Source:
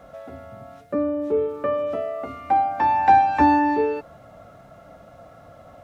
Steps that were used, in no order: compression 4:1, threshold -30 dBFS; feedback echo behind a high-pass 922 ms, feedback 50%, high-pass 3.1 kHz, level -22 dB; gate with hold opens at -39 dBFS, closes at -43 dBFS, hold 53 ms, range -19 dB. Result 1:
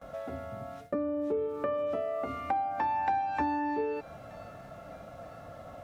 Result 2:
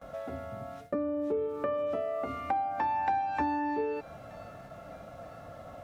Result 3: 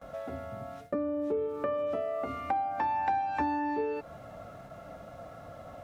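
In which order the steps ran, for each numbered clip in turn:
feedback echo behind a high-pass > gate with hold > compression; gate with hold > feedback echo behind a high-pass > compression; gate with hold > compression > feedback echo behind a high-pass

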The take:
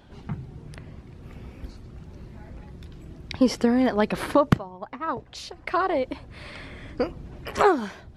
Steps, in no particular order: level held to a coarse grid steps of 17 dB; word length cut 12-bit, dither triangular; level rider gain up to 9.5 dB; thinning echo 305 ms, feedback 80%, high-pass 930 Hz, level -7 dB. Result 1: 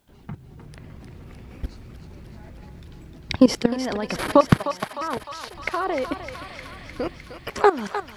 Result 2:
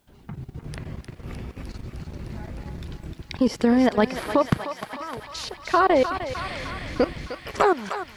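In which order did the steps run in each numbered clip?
level held to a coarse grid > level rider > thinning echo > word length cut; level rider > level held to a coarse grid > word length cut > thinning echo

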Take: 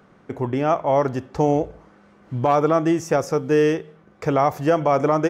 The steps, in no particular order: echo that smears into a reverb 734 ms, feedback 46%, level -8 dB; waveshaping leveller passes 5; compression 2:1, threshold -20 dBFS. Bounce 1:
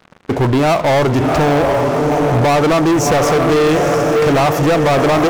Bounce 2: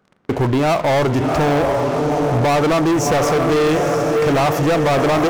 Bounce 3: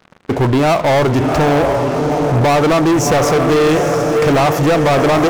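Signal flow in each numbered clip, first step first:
echo that smears into a reverb > compression > waveshaping leveller; echo that smears into a reverb > waveshaping leveller > compression; compression > echo that smears into a reverb > waveshaping leveller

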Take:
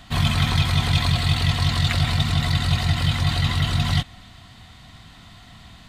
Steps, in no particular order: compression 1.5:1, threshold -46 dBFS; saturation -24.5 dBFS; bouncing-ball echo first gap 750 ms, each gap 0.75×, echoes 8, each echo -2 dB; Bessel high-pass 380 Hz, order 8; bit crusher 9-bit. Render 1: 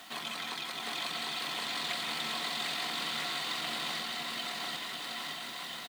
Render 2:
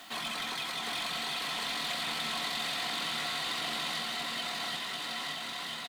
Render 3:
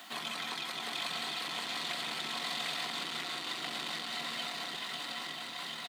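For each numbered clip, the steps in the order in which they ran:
compression > saturation > Bessel high-pass > bit crusher > bouncing-ball echo; Bessel high-pass > saturation > bouncing-ball echo > bit crusher > compression; bit crusher > bouncing-ball echo > compression > saturation > Bessel high-pass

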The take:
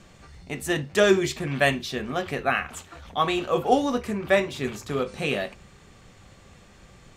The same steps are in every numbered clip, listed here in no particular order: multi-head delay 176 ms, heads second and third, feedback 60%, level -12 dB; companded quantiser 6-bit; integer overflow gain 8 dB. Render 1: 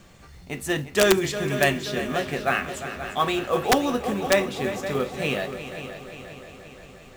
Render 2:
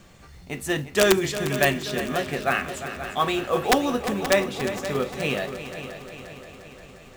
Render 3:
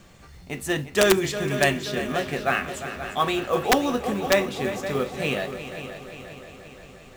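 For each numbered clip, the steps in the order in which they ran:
companded quantiser > multi-head delay > integer overflow; companded quantiser > integer overflow > multi-head delay; multi-head delay > companded quantiser > integer overflow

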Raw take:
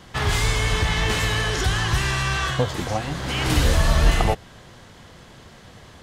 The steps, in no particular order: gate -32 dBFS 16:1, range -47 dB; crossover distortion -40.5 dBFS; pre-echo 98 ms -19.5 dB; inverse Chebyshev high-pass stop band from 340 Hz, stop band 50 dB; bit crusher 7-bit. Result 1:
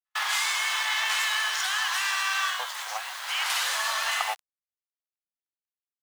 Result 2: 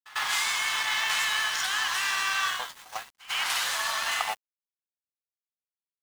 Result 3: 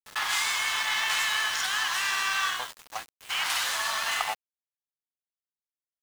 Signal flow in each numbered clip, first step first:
crossover distortion > bit crusher > pre-echo > gate > inverse Chebyshev high-pass; inverse Chebyshev high-pass > gate > bit crusher > crossover distortion > pre-echo; inverse Chebyshev high-pass > gate > crossover distortion > pre-echo > bit crusher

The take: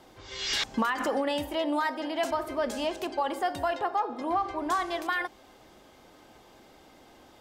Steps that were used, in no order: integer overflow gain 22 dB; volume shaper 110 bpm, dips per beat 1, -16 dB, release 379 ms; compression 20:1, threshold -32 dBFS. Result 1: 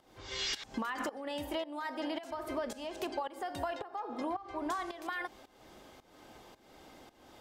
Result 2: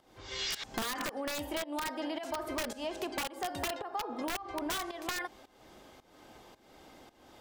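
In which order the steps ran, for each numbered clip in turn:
compression > volume shaper > integer overflow; volume shaper > integer overflow > compression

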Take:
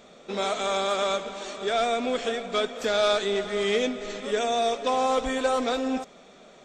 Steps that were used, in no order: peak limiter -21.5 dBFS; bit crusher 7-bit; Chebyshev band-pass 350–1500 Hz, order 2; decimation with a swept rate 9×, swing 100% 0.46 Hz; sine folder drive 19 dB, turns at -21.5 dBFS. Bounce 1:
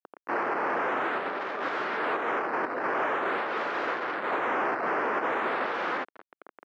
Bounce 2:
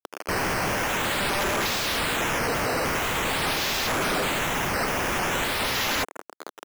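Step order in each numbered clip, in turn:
decimation with a swept rate > peak limiter > bit crusher > sine folder > Chebyshev band-pass; bit crusher > Chebyshev band-pass > decimation with a swept rate > sine folder > peak limiter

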